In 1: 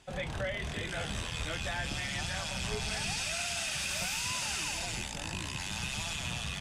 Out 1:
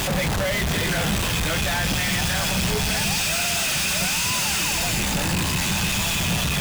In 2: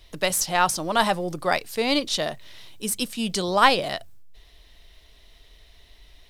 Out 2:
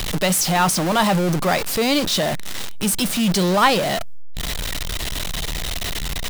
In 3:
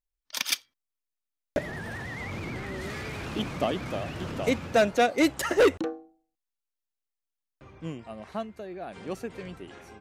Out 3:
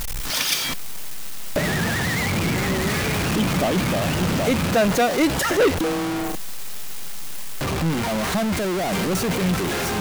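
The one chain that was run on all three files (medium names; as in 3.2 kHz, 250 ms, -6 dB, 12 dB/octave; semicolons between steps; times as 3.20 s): jump at every zero crossing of -18 dBFS; peaking EQ 180 Hz +6.5 dB 0.49 oct; trim -1 dB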